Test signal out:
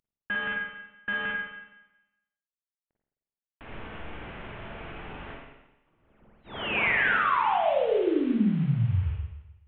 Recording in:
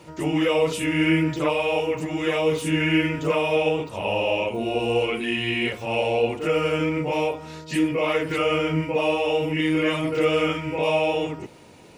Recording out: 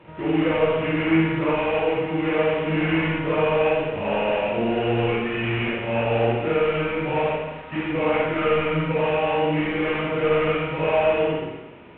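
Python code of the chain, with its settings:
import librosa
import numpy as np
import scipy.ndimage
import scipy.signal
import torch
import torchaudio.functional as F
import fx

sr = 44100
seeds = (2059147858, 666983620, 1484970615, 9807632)

p1 = fx.cvsd(x, sr, bps=16000)
p2 = p1 + fx.room_early_taps(p1, sr, ms=(24, 57), db=(-15.0, -9.5), dry=0)
p3 = fx.rev_spring(p2, sr, rt60_s=1.0, pass_ms=(43, 52), chirp_ms=40, drr_db=-2.5)
y = p3 * 10.0 ** (-2.0 / 20.0)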